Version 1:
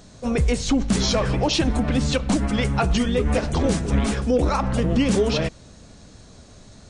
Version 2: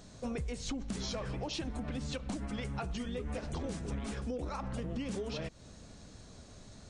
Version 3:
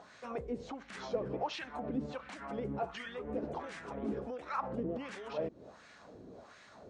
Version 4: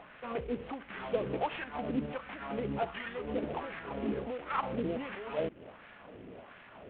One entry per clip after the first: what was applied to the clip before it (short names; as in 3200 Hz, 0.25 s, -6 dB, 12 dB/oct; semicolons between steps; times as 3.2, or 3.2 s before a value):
compressor 6:1, threshold -29 dBFS, peak gain reduction 13.5 dB; gain -6.5 dB
limiter -31 dBFS, peak gain reduction 5.5 dB; wah 1.4 Hz 330–1900 Hz, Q 2.1; gain +11 dB
CVSD 16 kbps; gain +3.5 dB